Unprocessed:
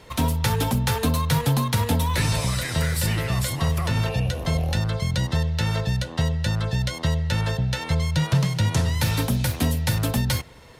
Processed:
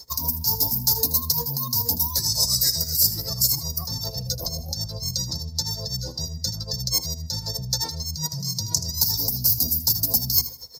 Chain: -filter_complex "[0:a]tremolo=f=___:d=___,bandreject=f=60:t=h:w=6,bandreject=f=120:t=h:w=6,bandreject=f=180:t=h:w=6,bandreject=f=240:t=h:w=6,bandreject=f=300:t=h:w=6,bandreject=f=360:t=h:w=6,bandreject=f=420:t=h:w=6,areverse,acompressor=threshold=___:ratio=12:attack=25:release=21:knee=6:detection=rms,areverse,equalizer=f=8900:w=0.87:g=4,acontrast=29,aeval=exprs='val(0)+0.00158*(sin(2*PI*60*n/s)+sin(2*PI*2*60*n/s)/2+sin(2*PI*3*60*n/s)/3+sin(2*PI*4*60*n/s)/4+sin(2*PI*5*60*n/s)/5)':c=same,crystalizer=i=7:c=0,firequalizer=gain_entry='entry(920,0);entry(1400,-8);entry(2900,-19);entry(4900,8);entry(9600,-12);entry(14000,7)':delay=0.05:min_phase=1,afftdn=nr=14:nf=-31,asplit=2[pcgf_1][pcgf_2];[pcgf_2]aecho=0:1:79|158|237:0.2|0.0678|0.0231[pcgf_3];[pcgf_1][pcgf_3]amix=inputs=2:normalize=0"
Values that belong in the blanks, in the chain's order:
7.9, 0.91, -38dB